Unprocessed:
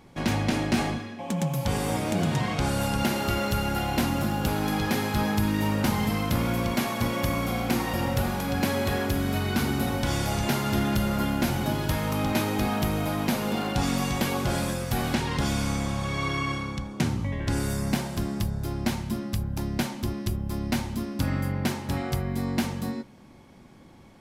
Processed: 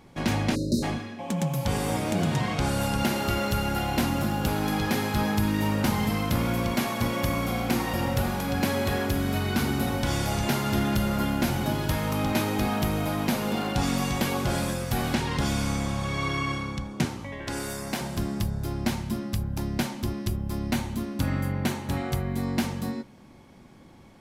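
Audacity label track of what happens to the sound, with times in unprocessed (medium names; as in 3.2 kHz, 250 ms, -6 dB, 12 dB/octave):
0.550000	0.830000	spectral selection erased 620–3700 Hz
17.050000	18.010000	tone controls bass -12 dB, treble 0 dB
20.720000	22.430000	band-stop 5.1 kHz, Q 9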